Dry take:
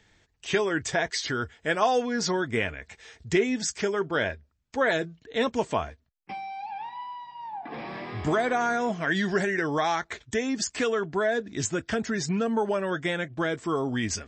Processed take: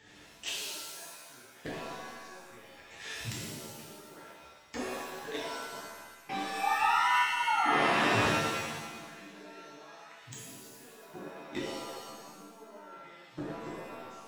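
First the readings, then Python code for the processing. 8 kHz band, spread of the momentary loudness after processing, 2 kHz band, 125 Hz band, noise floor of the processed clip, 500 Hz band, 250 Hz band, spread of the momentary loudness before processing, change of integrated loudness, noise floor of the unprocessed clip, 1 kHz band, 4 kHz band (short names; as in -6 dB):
-8.0 dB, 24 LU, -5.0 dB, -9.0 dB, -55 dBFS, -13.0 dB, -11.5 dB, 12 LU, -4.5 dB, -69 dBFS, -2.0 dB, -3.5 dB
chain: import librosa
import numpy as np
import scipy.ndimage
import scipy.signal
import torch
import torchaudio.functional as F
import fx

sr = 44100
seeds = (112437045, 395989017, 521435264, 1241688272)

y = fx.highpass(x, sr, hz=140.0, slope=6)
y = fx.gate_flip(y, sr, shuts_db=-25.0, range_db=-36)
y = np.clip(y, -10.0 ** (-33.0 / 20.0), 10.0 ** (-33.0 / 20.0))
y = fx.rev_shimmer(y, sr, seeds[0], rt60_s=1.3, semitones=7, shimmer_db=-2, drr_db=-7.5)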